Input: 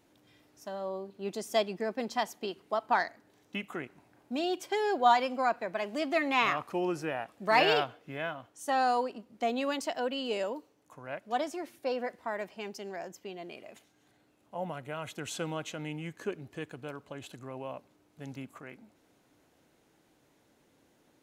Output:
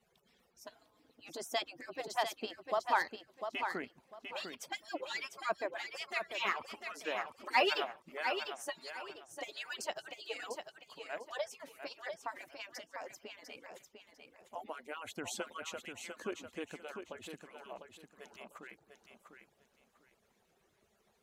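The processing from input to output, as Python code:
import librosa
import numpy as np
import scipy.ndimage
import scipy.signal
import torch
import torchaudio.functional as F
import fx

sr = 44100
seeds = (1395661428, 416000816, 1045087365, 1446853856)

y = fx.hpss_only(x, sr, part='percussive')
y = fx.wow_flutter(y, sr, seeds[0], rate_hz=2.1, depth_cents=18.0)
y = fx.echo_feedback(y, sr, ms=699, feedback_pct=23, wet_db=-7.0)
y = y * librosa.db_to_amplitude(-2.0)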